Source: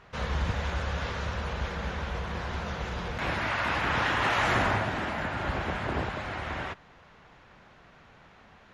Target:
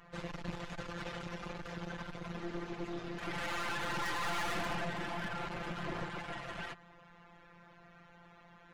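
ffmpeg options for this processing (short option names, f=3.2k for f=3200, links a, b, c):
-filter_complex "[0:a]asplit=3[a][b][c];[a]afade=t=out:st=2.36:d=0.02[d];[b]aeval=exprs='val(0)*sin(2*PI*270*n/s)':c=same,afade=t=in:st=2.36:d=0.02,afade=t=out:st=3.32:d=0.02[e];[c]afade=t=in:st=3.32:d=0.02[f];[d][e][f]amix=inputs=3:normalize=0,afftfilt=real='hypot(re,im)*cos(PI*b)':imag='0':win_size=1024:overlap=0.75,aeval=exprs='(tanh(112*val(0)+0.75)-tanh(0.75))/112':c=same,volume=7dB"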